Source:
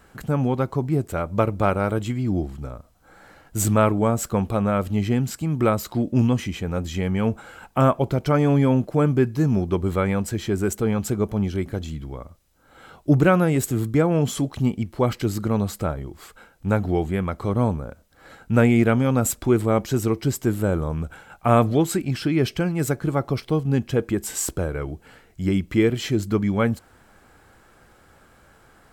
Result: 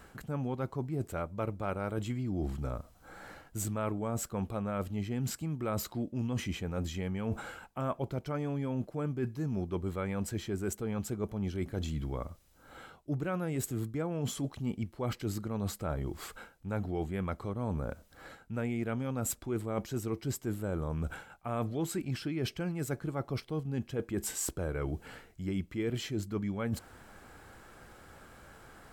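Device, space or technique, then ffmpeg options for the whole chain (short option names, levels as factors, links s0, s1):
compression on the reversed sound: -af "areverse,acompressor=threshold=0.0251:ratio=6,areverse"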